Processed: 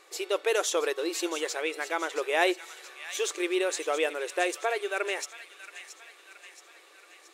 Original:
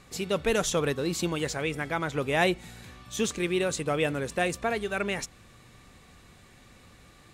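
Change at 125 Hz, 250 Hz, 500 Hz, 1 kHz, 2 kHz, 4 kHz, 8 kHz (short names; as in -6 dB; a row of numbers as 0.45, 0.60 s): under -40 dB, -5.0 dB, 0.0 dB, 0.0 dB, +0.5 dB, +0.5 dB, +0.5 dB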